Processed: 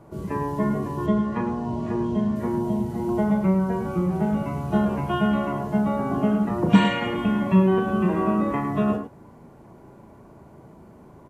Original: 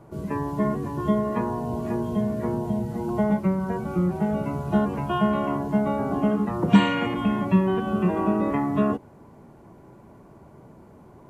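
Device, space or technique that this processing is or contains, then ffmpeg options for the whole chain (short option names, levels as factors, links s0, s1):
slapback doubling: -filter_complex "[0:a]asplit=3[s0][s1][s2];[s1]adelay=37,volume=0.447[s3];[s2]adelay=105,volume=0.355[s4];[s0][s3][s4]amix=inputs=3:normalize=0,asettb=1/sr,asplit=3[s5][s6][s7];[s5]atrim=end=1.064[s8];[s6]atrim=start=1.06:end=2.36,asetpts=PTS-STARTPTS,afade=t=in:d=0.004:c=qsin,afade=t=out:st=1.296:d=0.004:c=qsin,lowpass=6000[s9];[s7]atrim=start=2.356[s10];[s8][s9]acrossfade=d=0.004:c1=hsin:c2=qsin[s11];[s11][s10]acrossfade=d=0.004:c1=qsin:c2=hsin"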